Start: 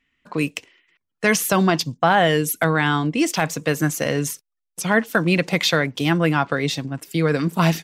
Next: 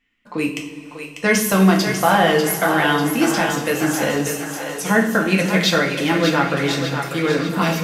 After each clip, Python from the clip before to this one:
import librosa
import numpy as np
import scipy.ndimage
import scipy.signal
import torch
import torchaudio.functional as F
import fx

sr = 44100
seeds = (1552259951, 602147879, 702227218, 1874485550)

y = fx.echo_split(x, sr, split_hz=400.0, low_ms=109, high_ms=595, feedback_pct=52, wet_db=-7.0)
y = fx.rev_double_slope(y, sr, seeds[0], early_s=0.43, late_s=4.9, knee_db=-18, drr_db=-0.5)
y = F.gain(torch.from_numpy(y), -2.0).numpy()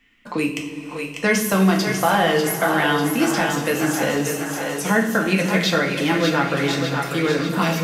y = x + 10.0 ** (-16.5 / 20.0) * np.pad(x, (int(572 * sr / 1000.0), 0))[:len(x)]
y = fx.band_squash(y, sr, depth_pct=40)
y = F.gain(torch.from_numpy(y), -2.0).numpy()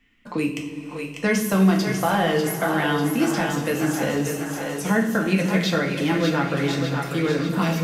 y = fx.low_shelf(x, sr, hz=350.0, db=6.5)
y = F.gain(torch.from_numpy(y), -5.0).numpy()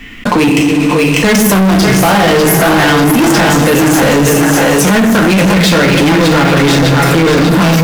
y = fx.leveller(x, sr, passes=5)
y = fx.env_flatten(y, sr, amount_pct=70)
y = F.gain(torch.from_numpy(y), 1.5).numpy()